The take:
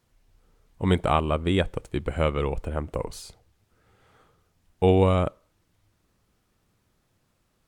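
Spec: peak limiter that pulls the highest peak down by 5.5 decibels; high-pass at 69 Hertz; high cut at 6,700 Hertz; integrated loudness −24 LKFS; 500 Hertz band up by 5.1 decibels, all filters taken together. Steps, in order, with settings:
high-pass filter 69 Hz
low-pass filter 6,700 Hz
parametric band 500 Hz +6 dB
brickwall limiter −8.5 dBFS

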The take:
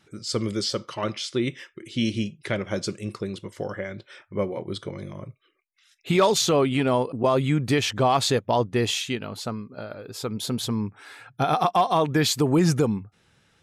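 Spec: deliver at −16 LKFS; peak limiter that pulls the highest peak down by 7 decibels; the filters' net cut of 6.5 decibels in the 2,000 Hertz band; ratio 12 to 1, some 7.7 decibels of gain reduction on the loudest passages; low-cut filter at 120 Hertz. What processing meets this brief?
high-pass filter 120 Hz
parametric band 2,000 Hz −8.5 dB
downward compressor 12 to 1, threshold −23 dBFS
level +16 dB
brickwall limiter −4.5 dBFS

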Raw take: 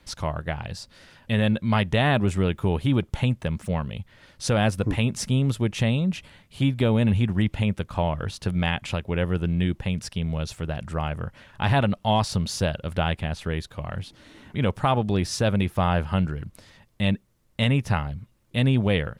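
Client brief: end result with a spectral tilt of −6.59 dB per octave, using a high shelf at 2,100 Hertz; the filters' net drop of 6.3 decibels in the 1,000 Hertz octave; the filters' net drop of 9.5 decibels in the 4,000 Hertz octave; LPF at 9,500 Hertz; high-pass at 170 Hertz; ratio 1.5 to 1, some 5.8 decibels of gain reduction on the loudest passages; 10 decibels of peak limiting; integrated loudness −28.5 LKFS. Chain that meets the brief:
high-pass filter 170 Hz
low-pass filter 9,500 Hz
parametric band 1,000 Hz −7 dB
high-shelf EQ 2,100 Hz −8.5 dB
parametric band 4,000 Hz −4 dB
downward compressor 1.5 to 1, threshold −37 dBFS
level +10 dB
brickwall limiter −17 dBFS

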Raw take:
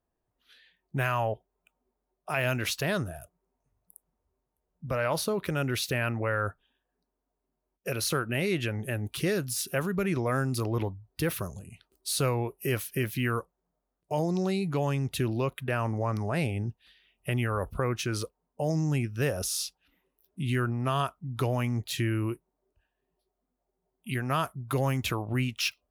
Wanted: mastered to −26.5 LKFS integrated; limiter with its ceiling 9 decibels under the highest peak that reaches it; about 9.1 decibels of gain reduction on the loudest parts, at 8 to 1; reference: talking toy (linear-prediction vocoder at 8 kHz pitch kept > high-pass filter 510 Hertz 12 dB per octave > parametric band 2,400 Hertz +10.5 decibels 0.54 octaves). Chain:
downward compressor 8 to 1, threshold −33 dBFS
brickwall limiter −29.5 dBFS
linear-prediction vocoder at 8 kHz pitch kept
high-pass filter 510 Hz 12 dB per octave
parametric band 2,400 Hz +10.5 dB 0.54 octaves
level +15 dB

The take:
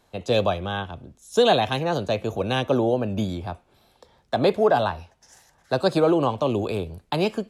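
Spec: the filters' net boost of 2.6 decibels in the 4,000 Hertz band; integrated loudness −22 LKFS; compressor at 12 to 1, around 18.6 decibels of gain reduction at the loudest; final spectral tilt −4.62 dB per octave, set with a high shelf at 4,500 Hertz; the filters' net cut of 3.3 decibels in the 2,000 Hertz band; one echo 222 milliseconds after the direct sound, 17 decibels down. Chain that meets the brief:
parametric band 2,000 Hz −5.5 dB
parametric band 4,000 Hz +8.5 dB
high-shelf EQ 4,500 Hz −8.5 dB
downward compressor 12 to 1, threshold −33 dBFS
single-tap delay 222 ms −17 dB
level +16 dB

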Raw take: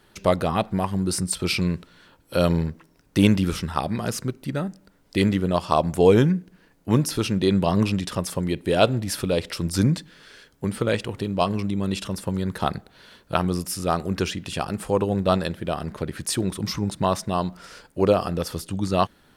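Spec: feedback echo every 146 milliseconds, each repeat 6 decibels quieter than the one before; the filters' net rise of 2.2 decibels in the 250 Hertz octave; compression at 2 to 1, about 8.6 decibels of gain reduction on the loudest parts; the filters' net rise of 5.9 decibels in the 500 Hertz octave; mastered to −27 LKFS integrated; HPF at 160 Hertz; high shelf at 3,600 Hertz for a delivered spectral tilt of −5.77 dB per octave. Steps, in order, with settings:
high-pass filter 160 Hz
parametric band 250 Hz +3 dB
parametric band 500 Hz +6.5 dB
high-shelf EQ 3,600 Hz −3.5 dB
downward compressor 2 to 1, threshold −21 dBFS
repeating echo 146 ms, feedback 50%, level −6 dB
level −2.5 dB

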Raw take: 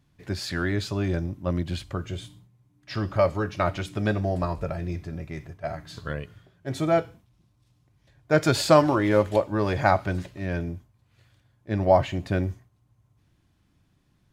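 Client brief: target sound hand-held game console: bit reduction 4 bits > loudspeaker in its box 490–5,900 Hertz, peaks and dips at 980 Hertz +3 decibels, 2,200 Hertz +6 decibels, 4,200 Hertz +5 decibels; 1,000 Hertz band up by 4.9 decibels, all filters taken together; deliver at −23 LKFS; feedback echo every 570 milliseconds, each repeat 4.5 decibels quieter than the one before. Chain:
parametric band 1,000 Hz +5 dB
repeating echo 570 ms, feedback 60%, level −4.5 dB
bit reduction 4 bits
loudspeaker in its box 490–5,900 Hz, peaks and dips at 980 Hz +3 dB, 2,200 Hz +6 dB, 4,200 Hz +5 dB
level +0.5 dB

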